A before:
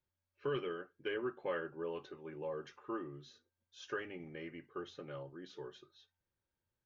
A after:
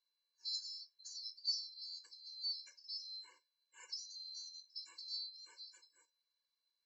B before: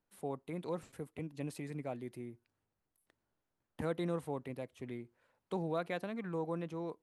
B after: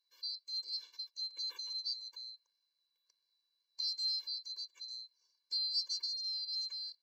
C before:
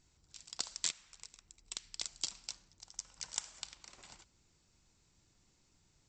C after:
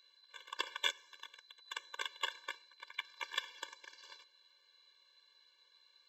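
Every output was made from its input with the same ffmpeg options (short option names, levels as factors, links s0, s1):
-filter_complex "[0:a]afftfilt=real='real(if(lt(b,736),b+184*(1-2*mod(floor(b/184),2)),b),0)':imag='imag(if(lt(b,736),b+184*(1-2*mod(floor(b/184),2)),b),0)':win_size=2048:overlap=0.75,acrossover=split=550 5200:gain=0.0891 1 0.126[s0][s1][s2];[s0][s1][s2]amix=inputs=3:normalize=0,afftfilt=real='re*eq(mod(floor(b*sr/1024/300),2),1)':imag='im*eq(mod(floor(b*sr/1024/300),2),1)':win_size=1024:overlap=0.75,volume=2.11"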